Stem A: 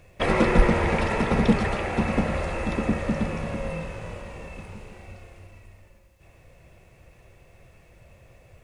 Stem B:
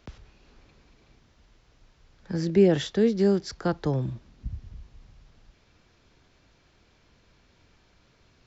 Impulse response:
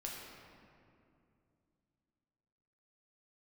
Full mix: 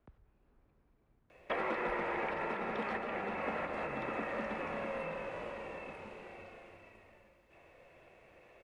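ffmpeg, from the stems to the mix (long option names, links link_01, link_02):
-filter_complex "[0:a]acrossover=split=260 3500:gain=0.1 1 0.2[link_01][link_02][link_03];[link_01][link_02][link_03]amix=inputs=3:normalize=0,adelay=1300,volume=-4dB,asplit=2[link_04][link_05];[link_05]volume=-6.5dB[link_06];[1:a]lowpass=1400,acompressor=threshold=-49dB:ratio=1.5,volume=-12.5dB,asplit=2[link_07][link_08];[link_08]apad=whole_len=438033[link_09];[link_04][link_09]sidechaincompress=threshold=-50dB:ratio=8:attack=25:release=251[link_10];[2:a]atrim=start_sample=2205[link_11];[link_06][link_11]afir=irnorm=-1:irlink=0[link_12];[link_10][link_07][link_12]amix=inputs=3:normalize=0,acrossover=split=750|2400[link_13][link_14][link_15];[link_13]acompressor=threshold=-40dB:ratio=4[link_16];[link_14]acompressor=threshold=-38dB:ratio=4[link_17];[link_15]acompressor=threshold=-54dB:ratio=4[link_18];[link_16][link_17][link_18]amix=inputs=3:normalize=0"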